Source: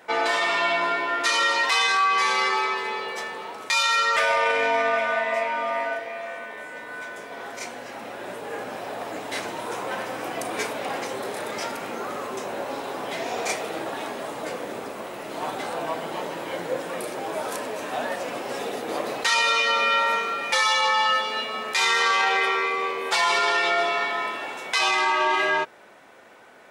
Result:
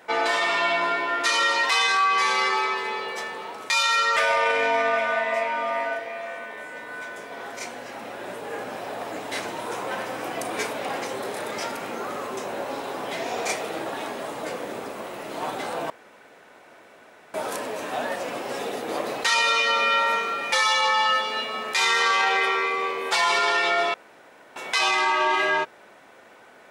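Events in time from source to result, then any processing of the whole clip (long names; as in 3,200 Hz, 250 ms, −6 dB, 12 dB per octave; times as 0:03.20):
0:15.90–0:17.34: fill with room tone
0:23.94–0:24.56: fill with room tone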